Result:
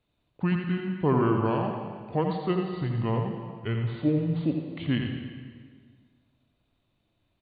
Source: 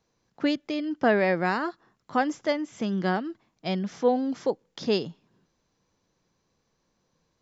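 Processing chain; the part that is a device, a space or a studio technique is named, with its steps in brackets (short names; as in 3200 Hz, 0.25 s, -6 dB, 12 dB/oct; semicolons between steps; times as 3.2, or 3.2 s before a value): monster voice (pitch shift -8.5 st; low shelf 140 Hz +3 dB; echo 85 ms -6.5 dB; reverb RT60 1.7 s, pre-delay 75 ms, DRR 5.5 dB); gain -3 dB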